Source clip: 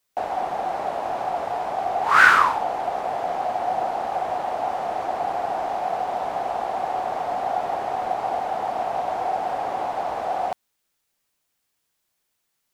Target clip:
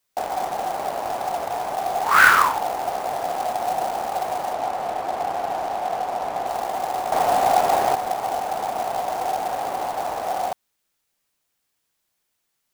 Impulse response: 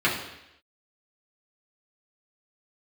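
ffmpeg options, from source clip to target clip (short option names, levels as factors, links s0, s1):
-filter_complex "[0:a]asettb=1/sr,asplit=3[s0][s1][s2];[s0]atrim=end=7.124[s3];[s1]atrim=start=7.12:end=7.95,asetpts=PTS-STARTPTS,afade=t=in:d=0.004:c=qsin,afade=t=out:st=0.826:d=0.004:c=qsin,acontrast=85[s4];[s2]atrim=start=7.946[s5];[s3][s4]acrossfade=d=0.004:c1=hsin:c2=qsin[s6];[s6][s5]acrossfade=d=0.004:c1=qsin:c2=hsin,acrusher=bits=3:mode=log:mix=0:aa=0.000001,asettb=1/sr,asplit=3[s7][s8][s9];[s7]atrim=end=4.534[s10];[s8]atrim=start=4.53:end=6.47,asetpts=PTS-STARTPTS,afade=t=in:d=0.004:c=qsin,afade=t=out:st=1.936:d=0.004:c=qsin,highshelf=f=5900:g=-8.5[s11];[s9]atrim=start=6.466[s12];[s10][s11]acrossfade=d=0.004:c1=hsin:c2=qsin[s13];[s13][s12]acrossfade=d=0.004:c1=qsin:c2=hsin"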